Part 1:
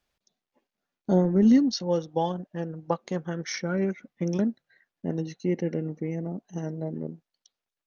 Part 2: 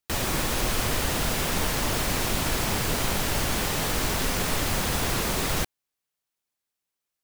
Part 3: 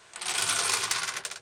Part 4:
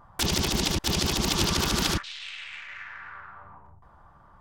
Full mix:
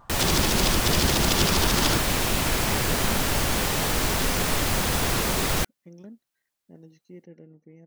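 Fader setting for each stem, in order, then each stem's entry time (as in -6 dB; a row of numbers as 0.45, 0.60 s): -19.0, +2.0, -19.5, +0.5 dB; 1.65, 0.00, 0.00, 0.00 s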